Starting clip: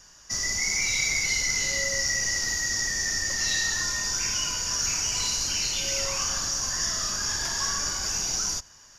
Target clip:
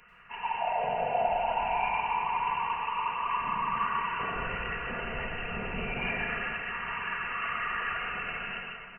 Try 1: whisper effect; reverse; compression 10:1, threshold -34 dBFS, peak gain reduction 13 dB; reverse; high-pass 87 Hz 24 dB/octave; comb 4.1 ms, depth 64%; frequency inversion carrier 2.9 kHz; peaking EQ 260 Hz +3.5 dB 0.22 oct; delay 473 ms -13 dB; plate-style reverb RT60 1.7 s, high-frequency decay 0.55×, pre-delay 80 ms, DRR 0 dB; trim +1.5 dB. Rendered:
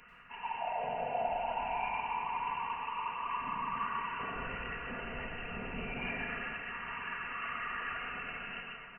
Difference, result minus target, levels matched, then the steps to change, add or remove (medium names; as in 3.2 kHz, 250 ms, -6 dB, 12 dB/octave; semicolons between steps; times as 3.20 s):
compression: peak gain reduction +6.5 dB; 250 Hz band +2.5 dB
change: compression 10:1, threshold -27 dBFS, peak gain reduction 7 dB; change: peaking EQ 260 Hz -6.5 dB 0.22 oct